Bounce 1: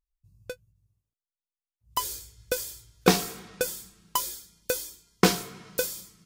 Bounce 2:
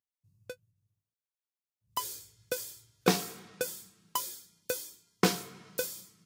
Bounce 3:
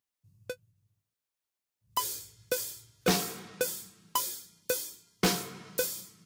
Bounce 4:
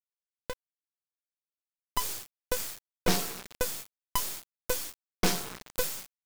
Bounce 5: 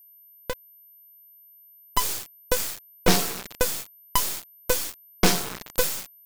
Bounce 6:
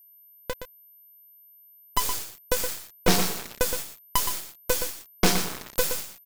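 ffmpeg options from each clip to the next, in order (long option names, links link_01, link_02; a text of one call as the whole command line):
ffmpeg -i in.wav -af "highpass=frequency=92:width=0.5412,highpass=frequency=92:width=1.3066,volume=-5.5dB" out.wav
ffmpeg -i in.wav -af "asoftclip=type=tanh:threshold=-24dB,volume=5dB" out.wav
ffmpeg -i in.wav -af "acrusher=bits=4:dc=4:mix=0:aa=0.000001,volume=4dB" out.wav
ffmpeg -i in.wav -af "aeval=exprs='val(0)+0.00141*sin(2*PI*13000*n/s)':channel_layout=same,volume=7dB" out.wav
ffmpeg -i in.wav -af "aecho=1:1:119:0.376,volume=-1.5dB" out.wav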